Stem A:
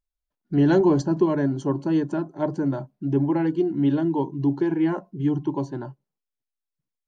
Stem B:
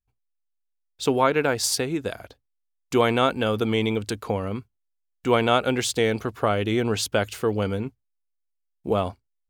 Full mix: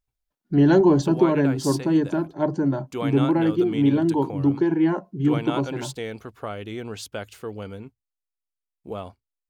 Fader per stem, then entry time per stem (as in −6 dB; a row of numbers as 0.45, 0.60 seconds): +2.0, −10.0 decibels; 0.00, 0.00 seconds